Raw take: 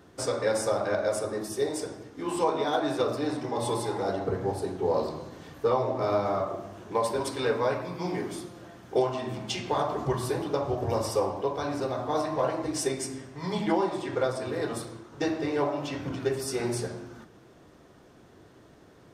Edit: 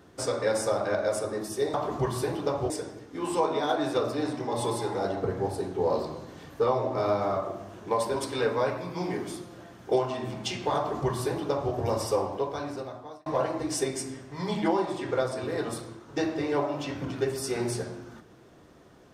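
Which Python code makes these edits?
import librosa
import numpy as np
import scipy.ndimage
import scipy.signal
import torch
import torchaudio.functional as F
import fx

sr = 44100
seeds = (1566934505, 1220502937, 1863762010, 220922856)

y = fx.edit(x, sr, fx.duplicate(start_s=9.81, length_s=0.96, to_s=1.74),
    fx.fade_out_span(start_s=11.39, length_s=0.91), tone=tone)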